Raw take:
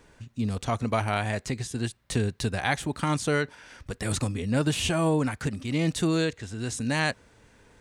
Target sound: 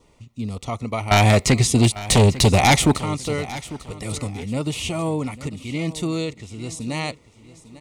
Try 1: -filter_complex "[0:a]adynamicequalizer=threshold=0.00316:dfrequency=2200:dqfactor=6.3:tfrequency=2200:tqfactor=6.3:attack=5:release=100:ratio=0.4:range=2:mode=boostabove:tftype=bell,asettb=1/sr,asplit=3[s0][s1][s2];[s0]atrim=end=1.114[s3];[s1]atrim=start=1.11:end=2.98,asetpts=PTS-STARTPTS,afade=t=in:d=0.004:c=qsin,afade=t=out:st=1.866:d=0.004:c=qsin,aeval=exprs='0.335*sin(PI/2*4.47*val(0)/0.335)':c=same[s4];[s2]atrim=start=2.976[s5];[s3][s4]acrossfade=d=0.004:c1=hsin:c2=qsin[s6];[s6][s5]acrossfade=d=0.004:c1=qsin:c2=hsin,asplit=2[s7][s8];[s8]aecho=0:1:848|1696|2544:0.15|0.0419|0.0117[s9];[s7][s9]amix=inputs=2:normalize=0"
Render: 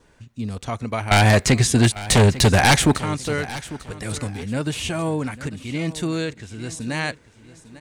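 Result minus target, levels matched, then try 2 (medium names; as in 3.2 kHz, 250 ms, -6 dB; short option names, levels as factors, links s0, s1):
2 kHz band +2.5 dB
-filter_complex "[0:a]adynamicequalizer=threshold=0.00316:dfrequency=2200:dqfactor=6.3:tfrequency=2200:tqfactor=6.3:attack=5:release=100:ratio=0.4:range=2:mode=boostabove:tftype=bell,asuperstop=centerf=1600:order=4:qfactor=2.9,asettb=1/sr,asplit=3[s0][s1][s2];[s0]atrim=end=1.114[s3];[s1]atrim=start=1.11:end=2.98,asetpts=PTS-STARTPTS,afade=t=in:d=0.004:c=qsin,afade=t=out:st=1.866:d=0.004:c=qsin,aeval=exprs='0.335*sin(PI/2*4.47*val(0)/0.335)':c=same[s4];[s2]atrim=start=2.976[s5];[s3][s4]acrossfade=d=0.004:c1=hsin:c2=qsin[s6];[s6][s5]acrossfade=d=0.004:c1=qsin:c2=hsin,asplit=2[s7][s8];[s8]aecho=0:1:848|1696|2544:0.15|0.0419|0.0117[s9];[s7][s9]amix=inputs=2:normalize=0"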